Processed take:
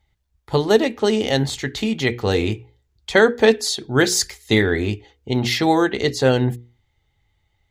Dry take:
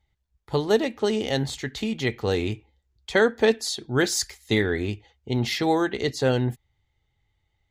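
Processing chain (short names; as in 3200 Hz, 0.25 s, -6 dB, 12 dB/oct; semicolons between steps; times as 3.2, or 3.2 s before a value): notches 60/120/180/240/300/360/420/480 Hz; gain +6 dB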